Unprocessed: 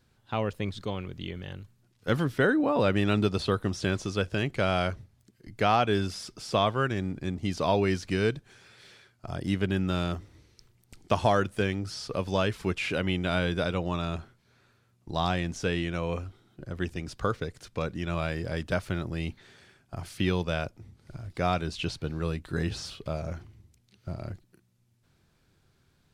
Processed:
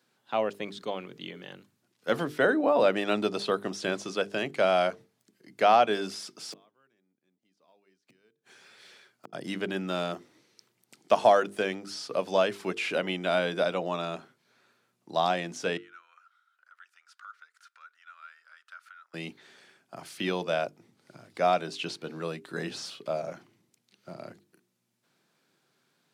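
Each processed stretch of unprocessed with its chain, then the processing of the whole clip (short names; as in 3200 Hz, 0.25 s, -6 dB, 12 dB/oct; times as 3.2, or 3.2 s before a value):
6.45–9.33 block floating point 7-bit + flipped gate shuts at -30 dBFS, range -38 dB
15.77–19.14 compressor 2.5:1, threshold -41 dBFS + ladder high-pass 1300 Hz, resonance 80%
whole clip: Bessel high-pass 260 Hz, order 8; notches 50/100/150/200/250/300/350/400/450 Hz; dynamic EQ 650 Hz, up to +7 dB, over -43 dBFS, Q 2.3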